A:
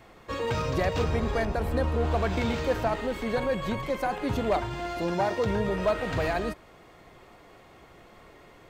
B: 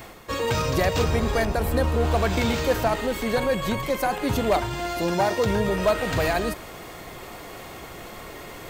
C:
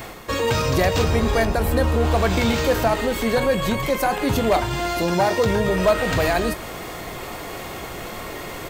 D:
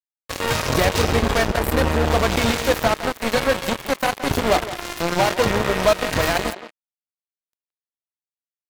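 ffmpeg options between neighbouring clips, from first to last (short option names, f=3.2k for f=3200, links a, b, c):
-af "areverse,acompressor=mode=upward:threshold=-34dB:ratio=2.5,areverse,aemphasis=mode=production:type=50kf,volume=4dB"
-filter_complex "[0:a]asplit=2[a][b];[b]alimiter=limit=-22.5dB:level=0:latency=1:release=175,volume=1dB[c];[a][c]amix=inputs=2:normalize=0,asplit=2[d][e];[e]adelay=22,volume=-12.5dB[f];[d][f]amix=inputs=2:normalize=0"
-filter_complex "[0:a]acrusher=bits=2:mix=0:aa=0.5,aeval=exprs='sgn(val(0))*max(abs(val(0))-0.00447,0)':c=same,asplit=2[a][b];[b]adelay=170,highpass=300,lowpass=3.4k,asoftclip=type=hard:threshold=-18.5dB,volume=-9dB[c];[a][c]amix=inputs=2:normalize=0"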